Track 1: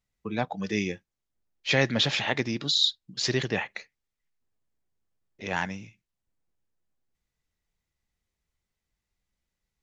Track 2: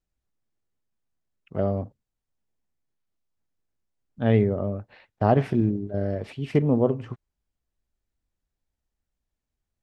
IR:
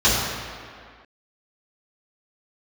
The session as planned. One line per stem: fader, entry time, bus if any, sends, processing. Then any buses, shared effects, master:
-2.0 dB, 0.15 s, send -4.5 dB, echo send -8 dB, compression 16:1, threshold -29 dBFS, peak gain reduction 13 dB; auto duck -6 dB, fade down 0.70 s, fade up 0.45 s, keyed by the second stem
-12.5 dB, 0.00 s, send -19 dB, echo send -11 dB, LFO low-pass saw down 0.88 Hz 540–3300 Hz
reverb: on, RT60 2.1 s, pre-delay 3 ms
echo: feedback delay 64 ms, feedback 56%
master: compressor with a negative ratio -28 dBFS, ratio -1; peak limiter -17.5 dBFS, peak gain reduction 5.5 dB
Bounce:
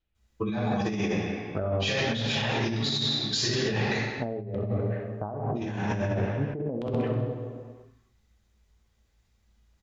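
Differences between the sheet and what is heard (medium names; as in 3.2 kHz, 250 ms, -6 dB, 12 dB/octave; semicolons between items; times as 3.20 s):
stem 2 -12.5 dB -> -3.0 dB; reverb return -8.0 dB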